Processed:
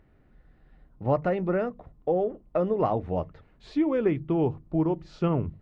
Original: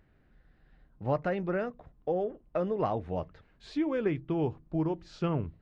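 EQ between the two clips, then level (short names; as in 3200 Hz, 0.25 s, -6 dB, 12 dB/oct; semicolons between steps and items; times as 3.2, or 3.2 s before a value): high shelf 2400 Hz -8.5 dB; notches 50/100/150/200 Hz; notch 1600 Hz, Q 12; +5.5 dB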